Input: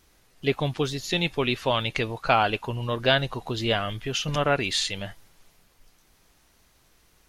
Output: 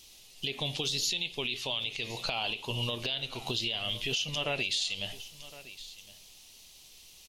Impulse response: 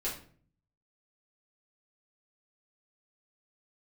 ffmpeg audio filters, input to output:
-filter_complex "[0:a]firequalizer=gain_entry='entry(780,0);entry(1500,-12);entry(2800,9);entry(6100,11)':delay=0.05:min_phase=1,asplit=2[link_01][link_02];[1:a]atrim=start_sample=2205[link_03];[link_02][link_03]afir=irnorm=-1:irlink=0,volume=-17.5dB[link_04];[link_01][link_04]amix=inputs=2:normalize=0,flanger=delay=2.7:depth=9.4:regen=-88:speed=0.72:shape=triangular,equalizer=frequency=2900:width=0.43:gain=7.5,acompressor=threshold=-26dB:ratio=6,aecho=1:1:1062:0.106,alimiter=limit=-20.5dB:level=0:latency=1:release=62"

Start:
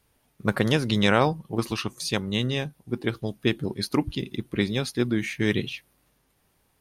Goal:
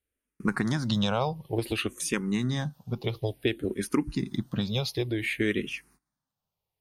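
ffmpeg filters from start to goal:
ffmpeg -i in.wav -filter_complex "[0:a]agate=range=-22dB:threshold=-58dB:ratio=16:detection=peak,acompressor=threshold=-26dB:ratio=4,asplit=2[link_01][link_02];[link_02]afreqshift=-0.56[link_03];[link_01][link_03]amix=inputs=2:normalize=1,volume=5dB" out.wav

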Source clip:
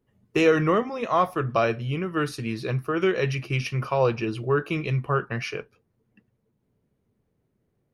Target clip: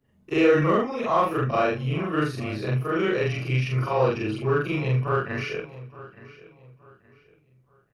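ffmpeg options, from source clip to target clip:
ffmpeg -i in.wav -filter_complex "[0:a]afftfilt=real='re':imag='-im':win_size=4096:overlap=0.75,acrossover=split=3600[link_01][link_02];[link_02]acompressor=threshold=-52dB:ratio=4:attack=1:release=60[link_03];[link_01][link_03]amix=inputs=2:normalize=0,asplit=2[link_04][link_05];[link_05]asoftclip=type=tanh:threshold=-30dB,volume=-9.5dB[link_06];[link_04][link_06]amix=inputs=2:normalize=0,asplit=2[link_07][link_08];[link_08]adelay=871,lowpass=frequency=4800:poles=1,volume=-18dB,asplit=2[link_09][link_10];[link_10]adelay=871,lowpass=frequency=4800:poles=1,volume=0.33,asplit=2[link_11][link_12];[link_12]adelay=871,lowpass=frequency=4800:poles=1,volume=0.33[link_13];[link_07][link_09][link_11][link_13]amix=inputs=4:normalize=0,volume=3.5dB" out.wav

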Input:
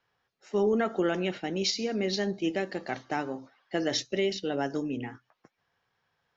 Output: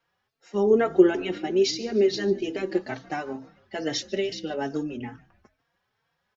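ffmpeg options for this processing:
ffmpeg -i in.wav -filter_complex "[0:a]asettb=1/sr,asplit=3[link_01][link_02][link_03];[link_01]atrim=end=0.704[link_04];[link_02]atrim=start=0.7:end=2.81,asetpts=PTS-STARTPTS,afade=type=in:duration=0.004:curve=qsin,afade=type=out:start_time=2.106:duration=0.004:curve=qsin,equalizer=frequency=380:width=3.6:gain=12.5[link_05];[link_03]atrim=start=2.806[link_06];[link_04][link_05]acrossfade=duration=0.004:curve1=hsin:curve2=qsin[link_07];[link_07][link_06]acrossfade=duration=0.004:curve1=qsin:curve2=hsin,asplit=4[link_08][link_09][link_10][link_11];[link_09]adelay=148,afreqshift=-67,volume=-22dB[link_12];[link_10]adelay=296,afreqshift=-134,volume=-28.2dB[link_13];[link_11]adelay=444,afreqshift=-201,volume=-34.4dB[link_14];[link_08][link_12][link_13][link_14]amix=inputs=4:normalize=0,asplit=2[link_15][link_16];[link_16]adelay=3.9,afreqshift=2.3[link_17];[link_15][link_17]amix=inputs=2:normalize=1,volume=3.5dB" out.wav

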